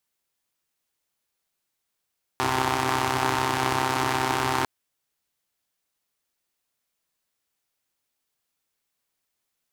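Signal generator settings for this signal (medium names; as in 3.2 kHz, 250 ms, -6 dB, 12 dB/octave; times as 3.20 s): four-cylinder engine model, steady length 2.25 s, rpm 3900, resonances 110/330/850 Hz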